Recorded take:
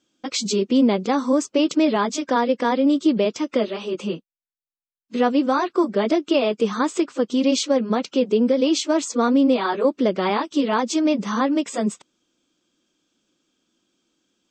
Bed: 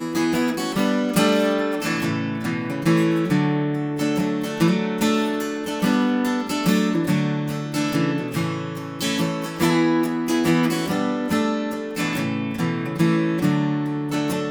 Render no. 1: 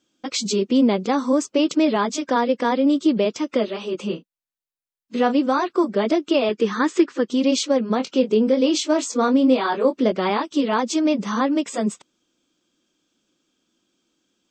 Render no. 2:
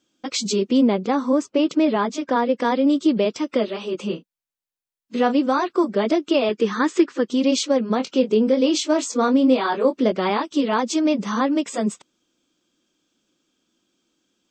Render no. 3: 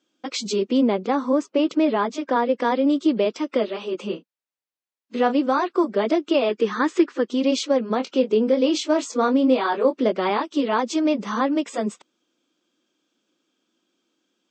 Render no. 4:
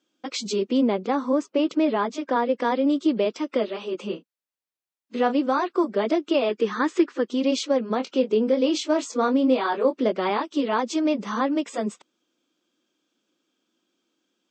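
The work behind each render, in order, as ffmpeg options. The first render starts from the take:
-filter_complex "[0:a]asettb=1/sr,asplit=3[a][b][c];[a]atrim=end=4.074[d];[b]atrim=start=4.07:end=5.38,asetpts=PTS-STARTPTS,afade=t=in:d=0.004:c=qsin,afade=t=out:st=1.306:d=0.004:c=qsin,asplit=2[e][f];[f]adelay=34,volume=-10.5dB[g];[e][g]amix=inputs=2:normalize=0,atrim=end_sample=57771[h];[c]atrim=start=5.376[i];[d][h]acrossfade=d=0.004:c1=hsin:c2=qsin[j];[j][i]acrossfade=d=0.004:c1=qsin:c2=hsin,asettb=1/sr,asplit=3[k][l][m];[k]atrim=end=6.494[n];[l]atrim=start=6.49:end=7.28,asetpts=PTS-STARTPTS,afade=t=in:d=0.004:c=qsin,afade=t=out:st=0.786:d=0.004:c=qsin,highpass=130,equalizer=f=350:t=q:w=4:g=6,equalizer=f=670:t=q:w=4:g=-7,equalizer=f=1.8k:t=q:w=4:g=9,lowpass=f=7k:w=0.5412,lowpass=f=7k:w=1.3066[o];[m]atrim=start=7.276[p];[n][o]acrossfade=d=0.004:c1=hsin:c2=qsin[q];[q][p]acrossfade=d=0.004:c1=qsin:c2=hsin,asettb=1/sr,asplit=3[r][s][t];[r]atrim=end=7.974[u];[s]atrim=start=7.97:end=10.12,asetpts=PTS-STARTPTS,afade=t=in:d=0.004:c=qsin,afade=t=out:st=2.146:d=0.004:c=qsin,asplit=2[v][w];[w]adelay=23,volume=-8.5dB[x];[v][x]amix=inputs=2:normalize=0,atrim=end_sample=94815[y];[t]atrim=start=10.116[z];[u][y]acrossfade=d=0.004:c1=hsin:c2=qsin[aa];[aa][z]acrossfade=d=0.004:c1=qsin:c2=hsin"
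-filter_complex "[0:a]asettb=1/sr,asplit=3[a][b][c];[a]atrim=end=0.824[d];[b]atrim=start=0.82:end=2.57,asetpts=PTS-STARTPTS,afade=t=in:d=0.004:c=qsin,afade=t=out:st=1.746:d=0.004:c=qsin,highshelf=f=4.7k:g=-11[e];[c]atrim=start=2.566[f];[d][e]acrossfade=d=0.004:c1=hsin:c2=qsin[g];[g][f]acrossfade=d=0.004:c1=qsin:c2=hsin,asettb=1/sr,asplit=3[h][i][j];[h]atrim=end=3.074[k];[i]atrim=start=3.07:end=3.9,asetpts=PTS-STARTPTS,afade=t=in:d=0.004:c=qsin,afade=t=out:st=0.826:d=0.004:c=qsin,bandreject=f=6.6k:w=7.2[l];[j]atrim=start=3.896[m];[k][l]acrossfade=d=0.004:c1=hsin:c2=qsin[n];[n][m]acrossfade=d=0.004:c1=qsin:c2=hsin"
-af "highpass=240,highshelf=f=6.4k:g=-10.5"
-af "volume=-2dB"

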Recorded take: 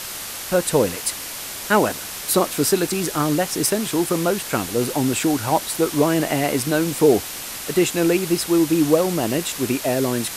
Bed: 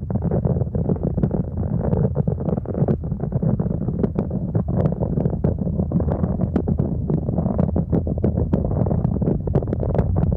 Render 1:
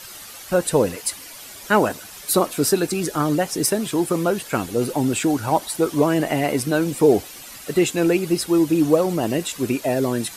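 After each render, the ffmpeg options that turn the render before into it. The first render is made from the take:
-af "afftdn=nr=11:nf=-32"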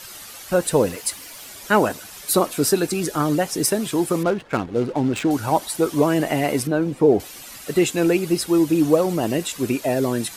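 -filter_complex "[0:a]asettb=1/sr,asplit=3[a][b][c];[a]atrim=end=0.624[d];[b]atrim=start=0.62:end=1.49,asetpts=PTS-STARTPTS,afade=t=in:d=0.004:c=qsin,afade=t=out:st=0.866:d=0.004:c=qsin,acrusher=bits=7:mix=0:aa=0.5[e];[c]atrim=start=1.486[f];[d][e]acrossfade=d=0.004:c1=hsin:c2=qsin[g];[g][f]acrossfade=d=0.004:c1=qsin:c2=hsin,asettb=1/sr,asplit=3[h][i][j];[h]atrim=end=4.234[k];[i]atrim=start=4.23:end=5.31,asetpts=PTS-STARTPTS,afade=t=in:d=0.004:c=qsin,afade=t=out:st=1.076:d=0.004:c=qsin,adynamicsmooth=sensitivity=3.5:basefreq=1k[l];[j]atrim=start=5.306[m];[k][l]acrossfade=d=0.004:c1=hsin:c2=qsin[n];[n][m]acrossfade=d=0.004:c1=qsin:c2=hsin,asettb=1/sr,asplit=3[o][p][q];[o]atrim=end=6.674[r];[p]atrim=start=6.67:end=7.2,asetpts=PTS-STARTPTS,afade=t=in:d=0.004:c=qsin,afade=t=out:st=0.526:d=0.004:c=qsin,lowpass=f=1.2k:p=1[s];[q]atrim=start=7.196[t];[r][s]acrossfade=d=0.004:c1=hsin:c2=qsin[u];[u][t]acrossfade=d=0.004:c1=qsin:c2=hsin"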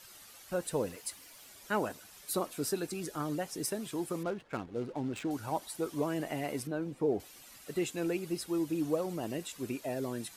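-af "volume=-15dB"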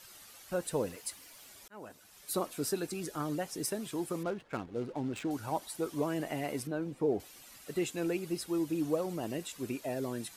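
-filter_complex "[0:a]asplit=2[a][b];[a]atrim=end=1.68,asetpts=PTS-STARTPTS,afade=t=out:st=1.676:d=0.004:c=hsin[c];[b]atrim=start=1.68,asetpts=PTS-STARTPTS,afade=t=in:d=0.71[d];[c][d]concat=n=2:v=0:a=1"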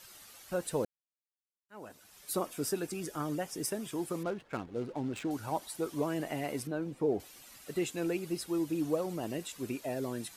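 -filter_complex "[0:a]asettb=1/sr,asplit=3[a][b][c];[a]atrim=end=2.334[d];[b]atrim=start=2.33:end=4,asetpts=PTS-STARTPTS,afade=t=in:d=0.004:c=qsin,afade=t=out:st=1.666:d=0.004:c=qsin,bandreject=f=4.1k:w=8.2[e];[c]atrim=start=3.996[f];[d][e]acrossfade=d=0.004:c1=hsin:c2=qsin[g];[g][f]acrossfade=d=0.004:c1=qsin:c2=hsin,asplit=3[h][i][j];[h]atrim=end=0.85,asetpts=PTS-STARTPTS,afade=t=out:st=0.846:d=0.004:c=hsin[k];[i]atrim=start=0.85:end=1.69,asetpts=PTS-STARTPTS,volume=0[l];[j]atrim=start=1.69,asetpts=PTS-STARTPTS,afade=t=in:d=0.004:c=hsin[m];[k][l][m]concat=n=3:v=0:a=1"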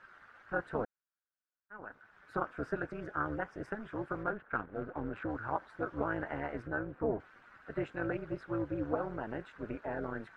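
-af "tremolo=f=220:d=0.857,lowpass=f=1.5k:t=q:w=5.4"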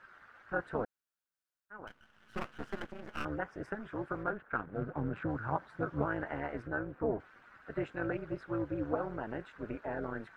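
-filter_complex "[0:a]asettb=1/sr,asplit=3[a][b][c];[a]atrim=end=1.874[d];[b]atrim=start=1.87:end=3.25,asetpts=PTS-STARTPTS,afade=t=in:d=0.004:c=qsin,afade=t=out:st=1.376:d=0.004:c=qsin,aeval=exprs='max(val(0),0)':c=same[e];[c]atrim=start=3.246[f];[d][e]acrossfade=d=0.004:c1=hsin:c2=qsin[g];[g][f]acrossfade=d=0.004:c1=qsin:c2=hsin,asettb=1/sr,asplit=3[h][i][j];[h]atrim=end=4.664[k];[i]atrim=start=4.66:end=6.05,asetpts=PTS-STARTPTS,afade=t=in:d=0.004:c=qsin,afade=t=out:st=1.386:d=0.004:c=qsin,equalizer=f=150:t=o:w=0.77:g=11[l];[j]atrim=start=6.046[m];[k][l]acrossfade=d=0.004:c1=hsin:c2=qsin[n];[n][m]acrossfade=d=0.004:c1=qsin:c2=hsin"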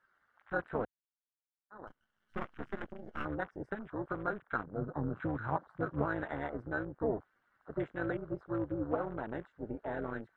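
-af "bandreject=f=2.5k:w=7.2,afwtdn=0.00447"

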